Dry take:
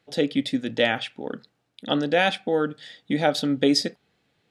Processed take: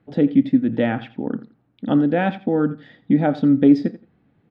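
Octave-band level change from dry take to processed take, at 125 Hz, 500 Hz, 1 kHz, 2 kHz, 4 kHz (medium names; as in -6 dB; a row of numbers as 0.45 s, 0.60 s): +9.0 dB, +0.5 dB, 0.0 dB, -4.5 dB, -15.0 dB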